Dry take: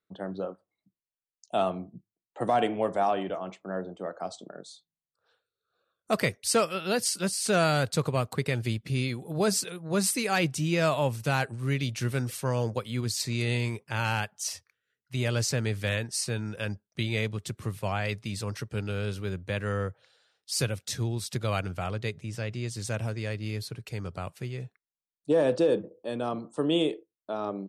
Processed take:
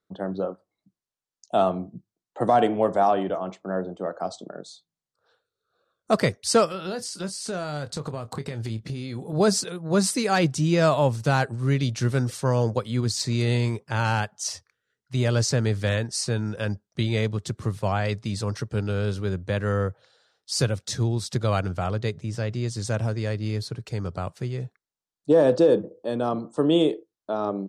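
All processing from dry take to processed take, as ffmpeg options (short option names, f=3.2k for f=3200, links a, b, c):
-filter_complex "[0:a]asettb=1/sr,asplit=3[a][b][c];[a]atrim=end=6.664[d];[b]atrim=start=6.66:end=9.33,asetpts=PTS-STARTPTS,afade=t=in:d=0.004:c=qsin,afade=t=out:st=2.666:d=0.004:c=qsin,acompressor=threshold=-33dB:ratio=6:attack=3.2:release=140:knee=1:detection=peak,asplit=2[e][f];[f]adelay=27,volume=-12dB[g];[e][g]amix=inputs=2:normalize=0,atrim=end_sample=117747[h];[c]atrim=start=9.326[i];[d][h]acrossfade=d=0.004:c1=hsin:c2=qsin[j];[j][i]acrossfade=d=0.004:c1=qsin:c2=hsin,lowpass=7.2k,equalizer=f=2.5k:w=1.5:g=-8,volume=6dB"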